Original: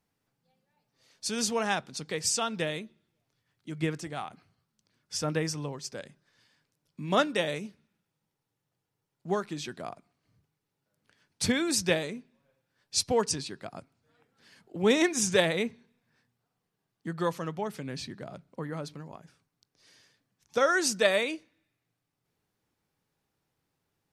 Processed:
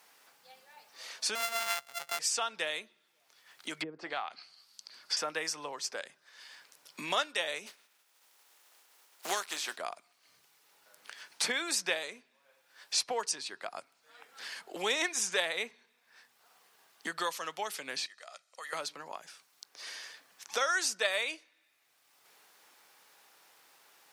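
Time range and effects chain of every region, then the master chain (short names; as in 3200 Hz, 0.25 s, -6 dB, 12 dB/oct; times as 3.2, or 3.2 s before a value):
1.35–2.19 sample sorter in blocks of 64 samples + bell 340 Hz -9 dB 2.6 oct
3.81–5.17 treble ducked by the level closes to 310 Hz, closed at -26.5 dBFS + bell 4600 Hz +12 dB 0.37 oct
7.66–9.76 spectral contrast lowered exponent 0.59 + Chebyshev high-pass 230 Hz
18.06–18.73 synth low-pass 7000 Hz, resonance Q 1.5 + differentiator + comb 1.6 ms, depth 49%
whole clip: HPF 770 Hz 12 dB/oct; three-band squash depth 70%; gain +1 dB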